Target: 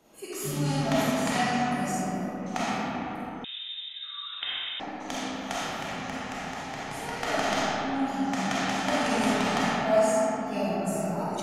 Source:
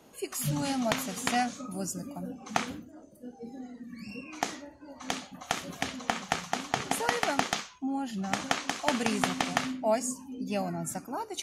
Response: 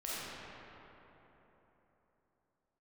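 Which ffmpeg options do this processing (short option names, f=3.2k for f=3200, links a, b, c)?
-filter_complex "[0:a]asettb=1/sr,asplit=3[a][b][c];[a]atrim=end=5.794[d];[b]atrim=start=5.79:end=7.21,asetpts=PTS-STARTPTS,afade=t=in:d=0.004:c=qsin,afade=t=out:st=1.416:d=0.004:c=qsin,acrossover=split=130[e][f];[f]acompressor=threshold=-35dB:ratio=3[g];[e][g]amix=inputs=2:normalize=0[h];[c]atrim=start=7.206[i];[d][h]acrossfade=d=0.004:c1=hsin:c2=qsin[j];[j][i]acrossfade=d=0.004:c1=qsin:c2=hsin[k];[1:a]atrim=start_sample=2205[l];[k][l]afir=irnorm=-1:irlink=0,asettb=1/sr,asplit=3[m][n][o];[m]atrim=end=3.444[p];[n]atrim=start=3.44:end=4.8,asetpts=PTS-STARTPTS,afade=t=in:d=0.004:c=qsin,afade=t=out:st=1.356:d=0.004:c=qsin,lowpass=f=3.3k:t=q:w=0.5098,lowpass=f=3.3k:t=q:w=0.6013,lowpass=f=3.3k:t=q:w=0.9,lowpass=f=3.3k:t=q:w=2.563,afreqshift=-3900[q];[o]atrim=start=4.796[r];[p][q]acrossfade=d=0.004:c1=hsin:c2=qsin[s];[s][r]acrossfade=d=0.004:c1=qsin:c2=hsin"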